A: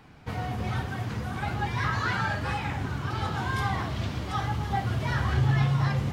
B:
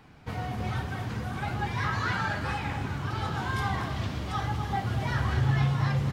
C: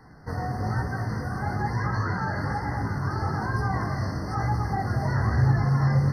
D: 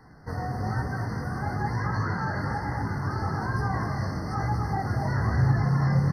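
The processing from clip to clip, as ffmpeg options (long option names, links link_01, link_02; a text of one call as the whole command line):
ffmpeg -i in.wav -af "aecho=1:1:245:0.299,volume=-1.5dB" out.wav
ffmpeg -i in.wav -filter_complex "[0:a]acrossover=split=870[link_01][link_02];[link_02]alimiter=level_in=8dB:limit=-24dB:level=0:latency=1:release=22,volume=-8dB[link_03];[link_01][link_03]amix=inputs=2:normalize=0,flanger=delay=16.5:depth=6.4:speed=1.1,afftfilt=real='re*eq(mod(floor(b*sr/1024/2100),2),0)':imag='im*eq(mod(floor(b*sr/1024/2100),2),0)':win_size=1024:overlap=0.75,volume=7dB" out.wav
ffmpeg -i in.wav -filter_complex "[0:a]asplit=5[link_01][link_02][link_03][link_04][link_05];[link_02]adelay=247,afreqshift=37,volume=-10.5dB[link_06];[link_03]adelay=494,afreqshift=74,volume=-20.1dB[link_07];[link_04]adelay=741,afreqshift=111,volume=-29.8dB[link_08];[link_05]adelay=988,afreqshift=148,volume=-39.4dB[link_09];[link_01][link_06][link_07][link_08][link_09]amix=inputs=5:normalize=0,volume=-1.5dB" out.wav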